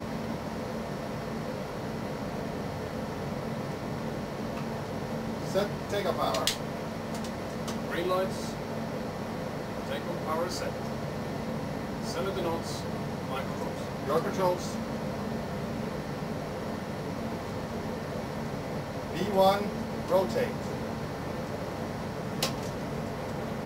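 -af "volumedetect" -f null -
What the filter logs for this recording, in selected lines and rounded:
mean_volume: -32.4 dB
max_volume: -10.3 dB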